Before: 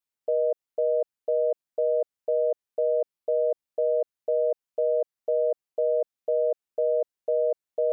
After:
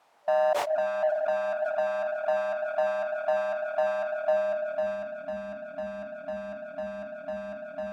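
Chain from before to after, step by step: low shelf 470 Hz -5.5 dB; on a send: diffused feedback echo 0.526 s, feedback 51%, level -11 dB; on the sum: sample leveller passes 5; limiter -21.5 dBFS, peak gain reduction 3 dB; power-law curve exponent 0.35; FFT band-reject 290–590 Hz; sample gate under -51 dBFS; band-pass sweep 740 Hz -> 330 Hz, 4.13–5.33; sustainer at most 48 dB/s; gain +4 dB

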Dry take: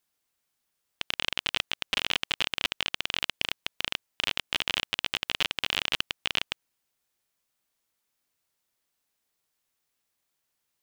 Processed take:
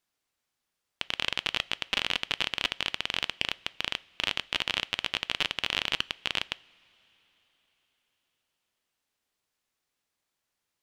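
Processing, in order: high shelf 9600 Hz -10.5 dB; two-slope reverb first 0.37 s, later 4.5 s, from -18 dB, DRR 18.5 dB

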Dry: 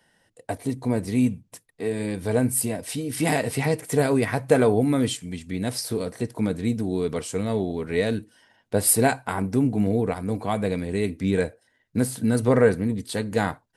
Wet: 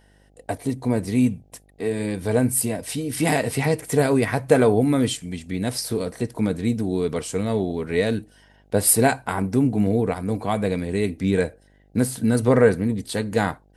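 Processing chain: buzz 50 Hz, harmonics 16, -59 dBFS -5 dB/oct; gain +2 dB

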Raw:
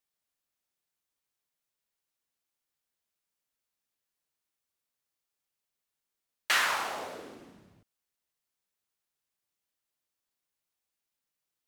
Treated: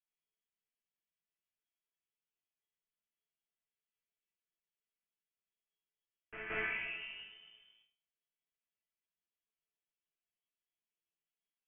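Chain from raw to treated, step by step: bell 2200 Hz -10 dB 0.63 oct; resonator bank A3 minor, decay 0.42 s; modulation noise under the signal 12 dB; inverted band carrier 3300 Hz; on a send: reverse echo 0.172 s -8 dB; on the sum: gain +11.5 dB

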